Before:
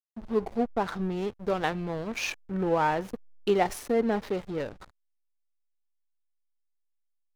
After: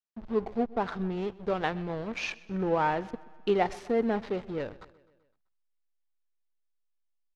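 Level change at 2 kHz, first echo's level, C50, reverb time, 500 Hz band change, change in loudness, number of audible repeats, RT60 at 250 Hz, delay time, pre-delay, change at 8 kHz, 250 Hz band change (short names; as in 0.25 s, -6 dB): -1.5 dB, -21.5 dB, none, none, -1.5 dB, -1.5 dB, 3, none, 0.128 s, none, n/a, -1.5 dB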